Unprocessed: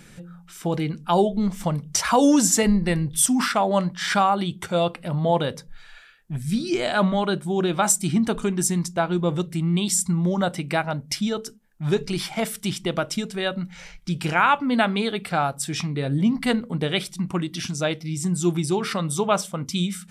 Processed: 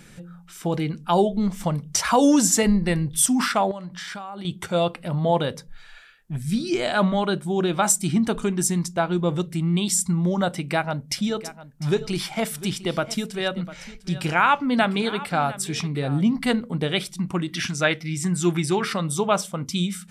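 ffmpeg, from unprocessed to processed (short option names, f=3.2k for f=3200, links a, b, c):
-filter_complex "[0:a]asettb=1/sr,asplit=3[a][b][c];[a]atrim=end=3.714[d];[b]atrim=start=3.71:end=4.45,asetpts=PTS-STARTPTS,afade=t=in:d=0.004:c=qsin,afade=t=out:st=0.736:d=0.004:c=qsin,acompressor=threshold=-31dB:ratio=12:attack=3.2:release=140:knee=1:detection=peak[e];[c]atrim=start=4.446[f];[d][e]acrossfade=d=0.004:c1=hsin:c2=qsin[g];[g][f]acrossfade=d=0.004:c1=qsin:c2=hsin,asettb=1/sr,asplit=3[h][i][j];[h]atrim=end=10.484[k];[i]atrim=start=10.48:end=16.25,asetpts=PTS-STARTPTS,afade=t=in:d=0.004:c=qsin,afade=t=out:st=5.766:d=0.004:c=qsin,aecho=1:1:701:0.15,atrim=end_sample=254457[l];[j]atrim=start=16.246[m];[k][l]acrossfade=d=0.004:c1=hsin:c2=qsin[n];[n][m]acrossfade=d=0.004:c1=qsin:c2=hsin,asettb=1/sr,asplit=3[o][p][q];[o]atrim=end=17.484[r];[p]atrim=start=17.48:end=18.85,asetpts=PTS-STARTPTS,afade=t=in:d=0.004:c=qsin,afade=t=out:st=1.366:d=0.004:c=qsin,equalizer=f=1.8k:t=o:w=1.2:g=10.5[s];[q]atrim=start=18.846[t];[r][s]acrossfade=d=0.004:c1=hsin:c2=qsin[u];[u][t]acrossfade=d=0.004:c1=qsin:c2=hsin"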